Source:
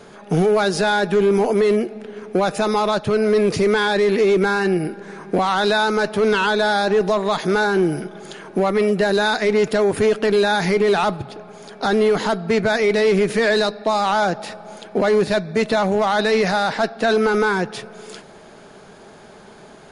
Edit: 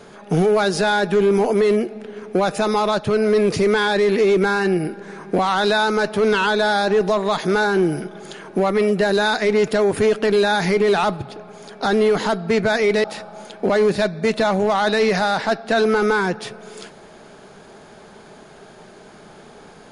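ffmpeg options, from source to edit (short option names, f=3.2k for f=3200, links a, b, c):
-filter_complex "[0:a]asplit=2[a][b];[a]atrim=end=13.042[c];[b]atrim=start=14.358[d];[c][d]acrossfade=d=0.004:c1=hsin:c2=hsin"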